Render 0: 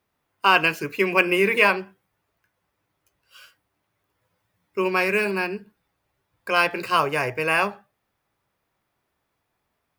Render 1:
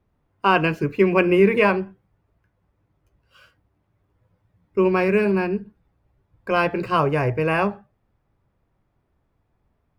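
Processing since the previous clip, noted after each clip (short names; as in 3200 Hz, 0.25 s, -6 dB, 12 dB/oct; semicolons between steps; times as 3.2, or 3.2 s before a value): tilt -4 dB/oct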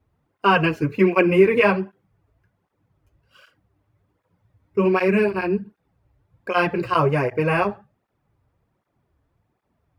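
tape flanging out of phase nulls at 1.3 Hz, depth 6 ms; gain +3.5 dB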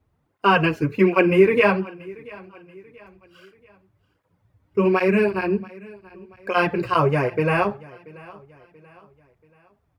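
feedback echo 0.683 s, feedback 42%, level -22 dB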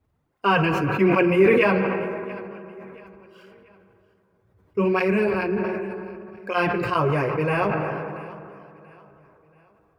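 reverb RT60 3.6 s, pre-delay 77 ms, DRR 10 dB; sustainer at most 24 dB/s; gain -3.5 dB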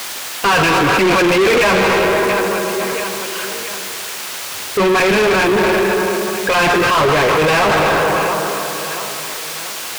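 requantised 8-bit, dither triangular; overdrive pedal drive 36 dB, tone 4800 Hz, clips at -5 dBFS; gain -1.5 dB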